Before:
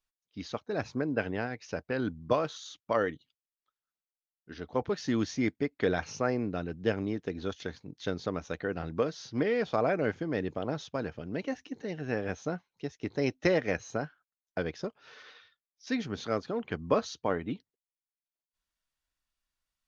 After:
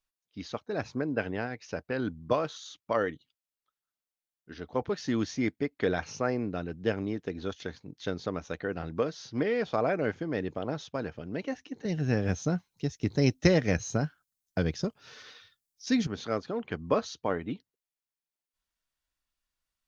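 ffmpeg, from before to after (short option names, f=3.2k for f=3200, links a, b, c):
-filter_complex "[0:a]asettb=1/sr,asplit=3[a][b][c];[a]atrim=end=11.854[d];[b]atrim=start=11.85:end=16.07,asetpts=PTS-STARTPTS,afade=t=in:d=0.004:c=qsin,afade=t=out:st=4.216:d=0.004:c=qsin,bass=f=250:g=12,treble=f=4k:g=11[e];[c]atrim=start=16.066[f];[d][e]acrossfade=d=0.004:c1=hsin:c2=qsin[g];[g][f]acrossfade=d=0.004:c1=qsin:c2=hsin"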